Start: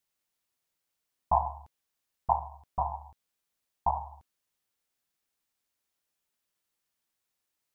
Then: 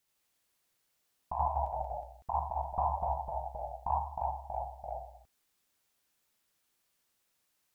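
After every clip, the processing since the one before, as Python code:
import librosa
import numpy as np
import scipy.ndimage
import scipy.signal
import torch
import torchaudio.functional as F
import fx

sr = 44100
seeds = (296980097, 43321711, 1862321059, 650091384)

y = fx.over_compress(x, sr, threshold_db=-31.0, ratio=-1.0)
y = fx.echo_pitch(y, sr, ms=81, semitones=-1, count=3, db_per_echo=-3.0)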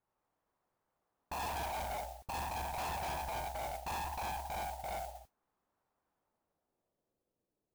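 y = fx.filter_sweep_lowpass(x, sr, from_hz=980.0, to_hz=450.0, start_s=6.09, end_s=7.39, q=1.5)
y = np.clip(y, -10.0 ** (-39.5 / 20.0), 10.0 ** (-39.5 / 20.0))
y = fx.mod_noise(y, sr, seeds[0], snr_db=12)
y = F.gain(torch.from_numpy(y), 2.0).numpy()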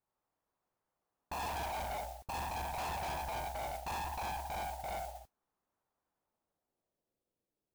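y = fx.leveller(x, sr, passes=1)
y = F.gain(torch.from_numpy(y), -2.0).numpy()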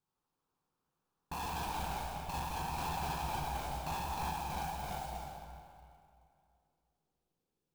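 y = fx.graphic_eq_31(x, sr, hz=(160, 630, 2000), db=(9, -12, -12))
y = fx.rev_freeverb(y, sr, rt60_s=2.4, hf_ratio=0.75, predelay_ms=120, drr_db=1.0)
y = fx.clock_jitter(y, sr, seeds[1], jitter_ms=0.022)
y = F.gain(torch.from_numpy(y), 1.0).numpy()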